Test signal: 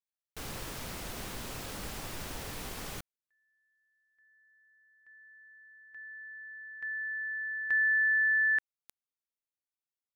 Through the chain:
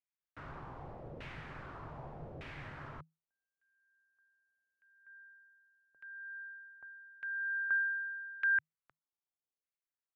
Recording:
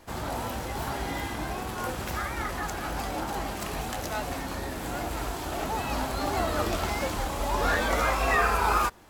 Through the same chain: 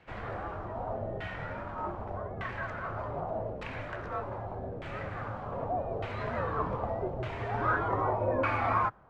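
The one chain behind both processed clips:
auto-filter low-pass saw down 0.83 Hz 650–2,700 Hz
frequency shifter −160 Hz
level −7 dB

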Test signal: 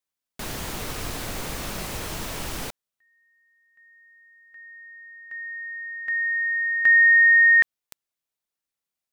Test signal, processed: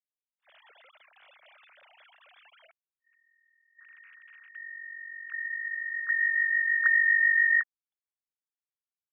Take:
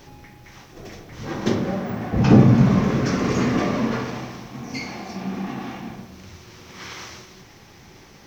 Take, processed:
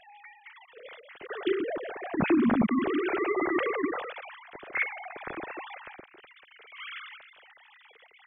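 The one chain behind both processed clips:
three sine waves on the formant tracks
graphic EQ with 10 bands 250 Hz −6 dB, 500 Hz −6 dB, 1,000 Hz −6 dB
downward compressor, threshold −20 dBFS
level that may rise only so fast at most 470 dB per second

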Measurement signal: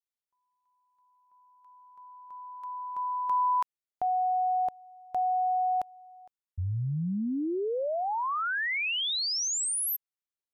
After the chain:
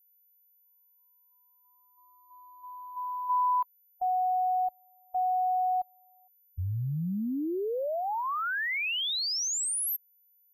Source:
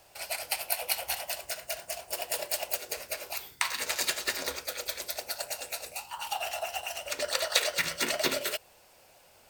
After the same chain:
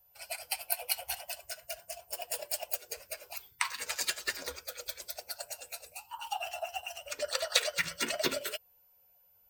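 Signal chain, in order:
spectral dynamics exaggerated over time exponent 1.5
steady tone 14,000 Hz −63 dBFS

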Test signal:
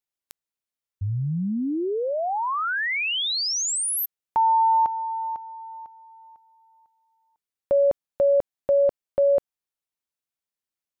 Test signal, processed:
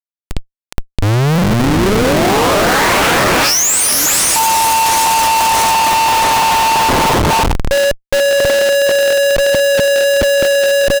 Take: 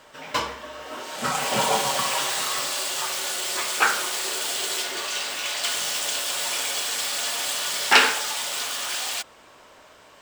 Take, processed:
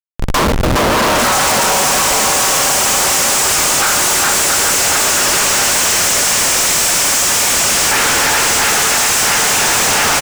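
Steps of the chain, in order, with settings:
feedback delay that plays each chunk backwards 338 ms, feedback 75%, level −6.5 dB
high-pass filter 180 Hz 6 dB per octave
in parallel at +1 dB: downward compressor 20 to 1, threshold −28 dBFS
on the sum: high shelf with overshoot 4,600 Hz +6.5 dB, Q 1.5
automatic gain control gain up to 3 dB
Butterworth band-reject 3,800 Hz, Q 1.6
repeating echo 415 ms, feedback 41%, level −4 dB
comparator with hysteresis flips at −23 dBFS
highs frequency-modulated by the lows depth 0.9 ms
level +5 dB

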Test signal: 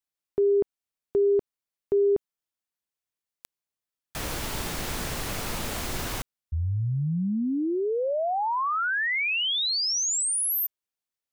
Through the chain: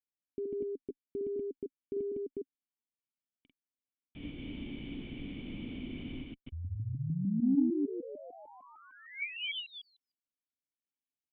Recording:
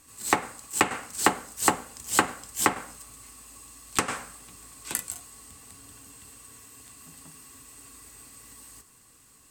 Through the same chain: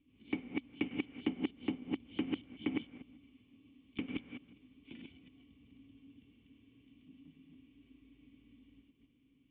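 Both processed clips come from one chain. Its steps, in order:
delay that plays each chunk backwards 151 ms, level −1 dB
formant resonators in series i
harmonic generator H 3 −36 dB, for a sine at −18.5 dBFS

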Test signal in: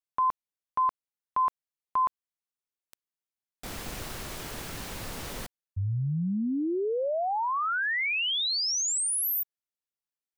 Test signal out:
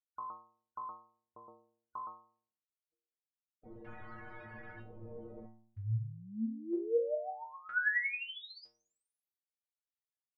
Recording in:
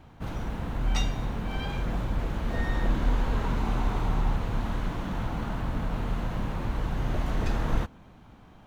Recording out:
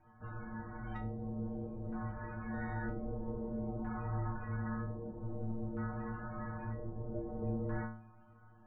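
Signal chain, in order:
spectral peaks only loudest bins 64
auto-filter low-pass square 0.52 Hz 490–1,800 Hz
stiff-string resonator 110 Hz, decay 0.68 s, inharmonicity 0.008
level +3 dB

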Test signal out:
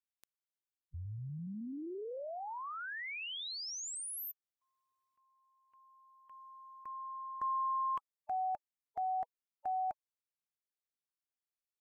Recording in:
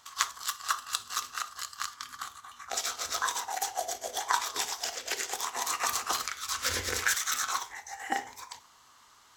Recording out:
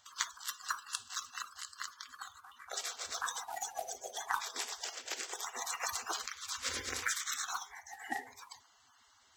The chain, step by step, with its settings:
spectral magnitudes quantised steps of 30 dB
level −6.5 dB

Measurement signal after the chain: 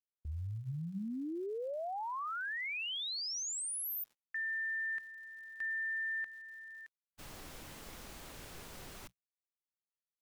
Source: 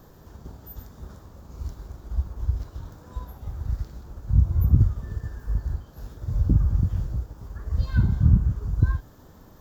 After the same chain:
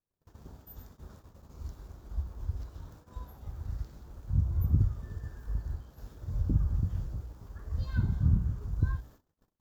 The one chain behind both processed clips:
mains-hum notches 60/120/180 Hz
surface crackle 250 per second −50 dBFS
noise gate −45 dBFS, range −38 dB
level −7 dB

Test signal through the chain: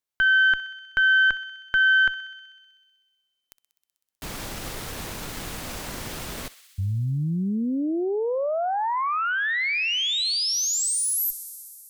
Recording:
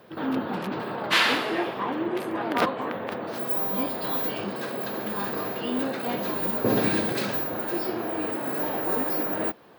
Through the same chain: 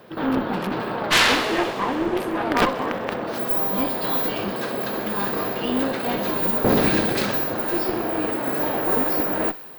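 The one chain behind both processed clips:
harmonic generator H 4 −9 dB, 5 −11 dB, 7 −20 dB, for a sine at −8.5 dBFS
feedback echo with a high-pass in the loop 63 ms, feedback 85%, high-pass 1,200 Hz, level −16 dB

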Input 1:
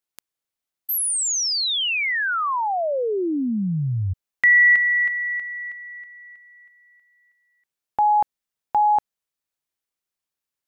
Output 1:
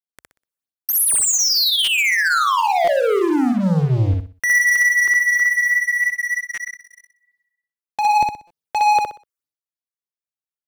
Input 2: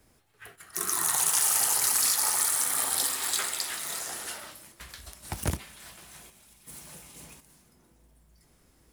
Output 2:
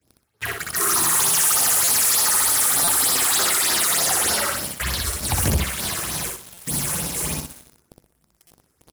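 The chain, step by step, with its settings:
high-pass filter 60 Hz 24 dB per octave
all-pass phaser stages 6, 3.3 Hz, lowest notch 180–2,700 Hz
in parallel at +2 dB: downward compressor 8 to 1, threshold −35 dBFS
on the sum: leveller curve on the samples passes 5
brickwall limiter −17 dBFS
noise gate with hold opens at −55 dBFS, hold 401 ms, range −10 dB
on a send: repeating echo 62 ms, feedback 29%, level −3 dB
on the sum: buffer that repeats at 0:01.84/0:02.84/0:06.54/0:08.47, samples 256, times 5

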